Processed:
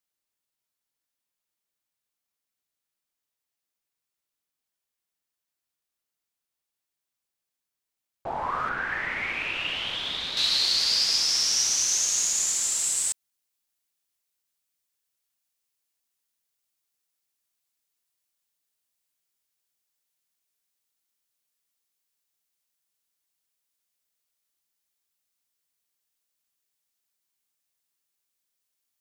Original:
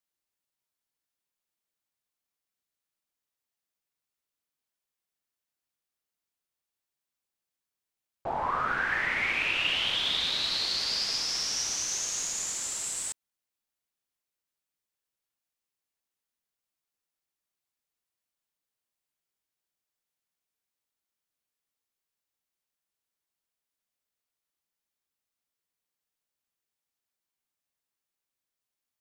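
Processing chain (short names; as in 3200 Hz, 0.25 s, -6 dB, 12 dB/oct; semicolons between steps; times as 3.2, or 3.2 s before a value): high shelf 2800 Hz +2.5 dB, from 8.69 s -5 dB, from 10.37 s +9 dB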